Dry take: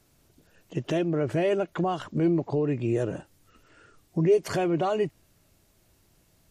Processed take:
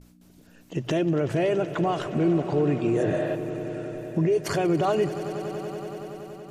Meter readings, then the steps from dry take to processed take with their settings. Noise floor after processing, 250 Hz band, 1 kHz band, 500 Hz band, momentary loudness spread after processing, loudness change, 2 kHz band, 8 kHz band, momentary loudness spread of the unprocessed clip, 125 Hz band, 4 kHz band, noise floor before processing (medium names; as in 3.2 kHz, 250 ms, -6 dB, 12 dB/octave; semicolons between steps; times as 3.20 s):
-55 dBFS, +2.5 dB, +3.0 dB, +2.0 dB, 11 LU, +1.0 dB, +3.0 dB, +4.0 dB, 10 LU, +2.5 dB, +3.5 dB, -65 dBFS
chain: gate with hold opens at -53 dBFS; spectral replace 3.04–3.33 s, 500–5300 Hz before; hum 60 Hz, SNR 24 dB; hum notches 60/120 Hz; peak limiter -20 dBFS, peak gain reduction 7.5 dB; on a send: echo with a slow build-up 94 ms, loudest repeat 5, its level -17 dB; on the sum: trim +4 dB